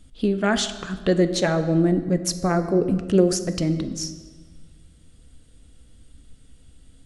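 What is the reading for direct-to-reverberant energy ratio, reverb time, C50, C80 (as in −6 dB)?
9.5 dB, 1.6 s, 11.5 dB, 13.0 dB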